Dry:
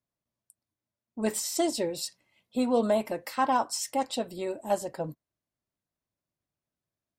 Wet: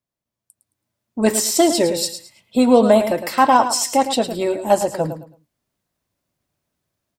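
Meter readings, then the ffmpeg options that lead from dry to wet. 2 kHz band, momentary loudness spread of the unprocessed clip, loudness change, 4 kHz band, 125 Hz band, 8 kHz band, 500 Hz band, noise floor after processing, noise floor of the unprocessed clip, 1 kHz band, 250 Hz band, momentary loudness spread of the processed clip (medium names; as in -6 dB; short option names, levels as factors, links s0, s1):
+12.5 dB, 10 LU, +12.5 dB, +12.5 dB, +12.5 dB, +12.5 dB, +12.5 dB, -85 dBFS, under -85 dBFS, +12.0 dB, +12.5 dB, 11 LU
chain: -af "dynaudnorm=f=420:g=3:m=3.55,aecho=1:1:109|218|327:0.316|0.0791|0.0198,volume=1.19"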